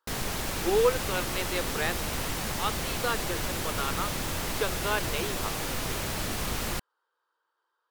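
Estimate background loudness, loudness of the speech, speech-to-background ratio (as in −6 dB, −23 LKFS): −31.5 LKFS, −32.0 LKFS, −0.5 dB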